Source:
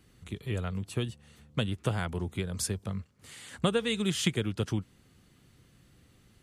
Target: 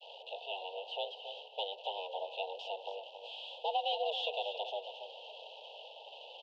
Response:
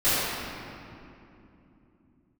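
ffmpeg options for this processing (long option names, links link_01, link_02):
-filter_complex "[0:a]aeval=exprs='val(0)+0.5*0.0112*sgn(val(0))':channel_layout=same,aemphasis=mode=production:type=50fm,agate=range=-33dB:threshold=-35dB:ratio=3:detection=peak,aeval=exprs='(tanh(31.6*val(0)+0.8)-tanh(0.8))/31.6':channel_layout=same,acrusher=bits=9:dc=4:mix=0:aa=0.000001,highpass=frequency=220:width_type=q:width=0.5412,highpass=frequency=220:width_type=q:width=1.307,lowpass=frequency=2700:width_type=q:width=0.5176,lowpass=frequency=2700:width_type=q:width=0.7071,lowpass=frequency=2700:width_type=q:width=1.932,afreqshift=290,asuperstop=centerf=1600:order=20:qfactor=0.9,asplit=2[link_01][link_02];[link_02]aecho=0:1:275|550|825:0.335|0.0938|0.0263[link_03];[link_01][link_03]amix=inputs=2:normalize=0,crystalizer=i=4.5:c=0,volume=1.5dB"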